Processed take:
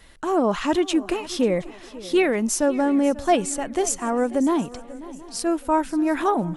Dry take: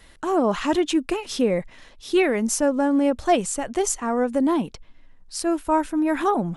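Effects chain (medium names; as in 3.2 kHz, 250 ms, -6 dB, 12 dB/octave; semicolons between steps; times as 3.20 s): shuffle delay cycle 721 ms, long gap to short 3:1, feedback 36%, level -18 dB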